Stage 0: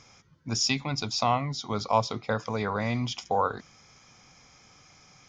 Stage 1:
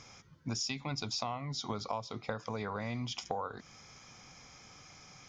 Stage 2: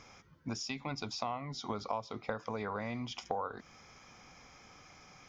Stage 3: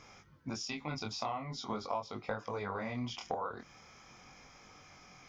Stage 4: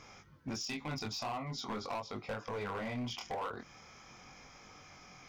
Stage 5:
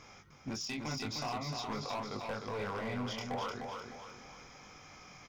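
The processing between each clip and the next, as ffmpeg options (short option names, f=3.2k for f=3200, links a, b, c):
-af "acompressor=threshold=-34dB:ratio=12,volume=1dB"
-af "equalizer=f=125:t=o:w=1:g=-6,equalizer=f=4k:t=o:w=1:g=-4,equalizer=f=8k:t=o:w=1:g=-8,volume=1dB"
-af "flanger=delay=19.5:depth=7.9:speed=0.43,volume=3dB"
-af "asoftclip=type=hard:threshold=-35.5dB,volume=1.5dB"
-af "aecho=1:1:304|608|912|1216|1520:0.562|0.231|0.0945|0.0388|0.0159"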